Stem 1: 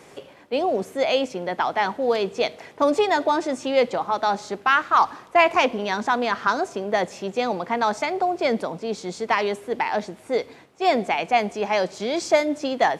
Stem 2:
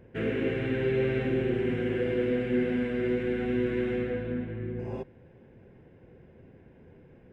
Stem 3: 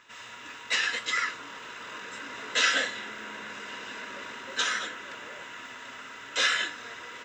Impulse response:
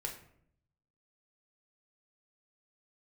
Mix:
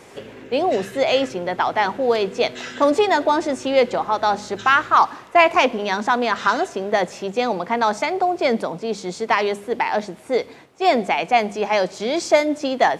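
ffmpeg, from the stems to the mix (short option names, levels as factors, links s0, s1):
-filter_complex "[0:a]volume=1.41[s0];[1:a]acompressor=threshold=0.0355:ratio=6,volume=0.398[s1];[2:a]volume=0.282[s2];[s0][s1][s2]amix=inputs=3:normalize=0,bandreject=f=50:t=h:w=6,bandreject=f=100:t=h:w=6,bandreject=f=150:t=h:w=6,bandreject=f=200:t=h:w=6"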